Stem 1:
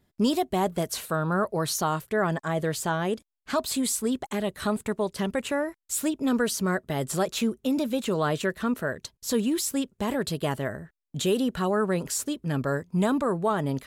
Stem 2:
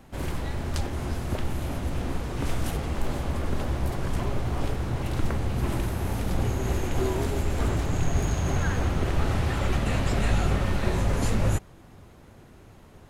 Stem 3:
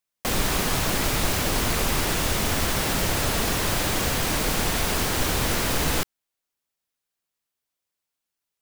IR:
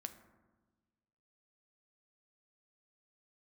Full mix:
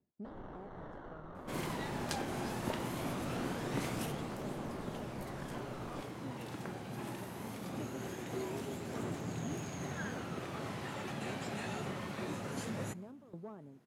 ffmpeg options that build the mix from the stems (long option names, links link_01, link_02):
-filter_complex "[0:a]aeval=exprs='clip(val(0),-1,0.0668)':channel_layout=same,bandpass=frequency=220:width_type=q:width=0.51:csg=0,aeval=exprs='val(0)*pow(10,-22*if(lt(mod(1.8*n/s,1),2*abs(1.8)/1000),1-mod(1.8*n/s,1)/(2*abs(1.8)/1000),(mod(1.8*n/s,1)-2*abs(1.8)/1000)/(1-2*abs(1.8)/1000))/20)':channel_layout=same,volume=-6dB[link_01];[1:a]agate=range=-6dB:threshold=-44dB:ratio=16:detection=peak,highpass=frequency=140:width=0.5412,highpass=frequency=140:width=1.3066,adelay=1350,volume=-1dB,afade=type=out:start_time=3.7:duration=0.72:silence=0.421697,asplit=2[link_02][link_03];[link_03]volume=-7dB[link_04];[2:a]acrusher=samples=18:mix=1:aa=0.000001,lowpass=1200,volume=-12dB[link_05];[link_01][link_05]amix=inputs=2:normalize=0,lowshelf=frequency=140:gain=-10.5,alimiter=level_in=10dB:limit=-24dB:level=0:latency=1:release=472,volume=-10dB,volume=0dB[link_06];[3:a]atrim=start_sample=2205[link_07];[link_04][link_07]afir=irnorm=-1:irlink=0[link_08];[link_02][link_06][link_08]amix=inputs=3:normalize=0,flanger=delay=0.1:depth=1.2:regen=77:speed=0.22:shape=triangular"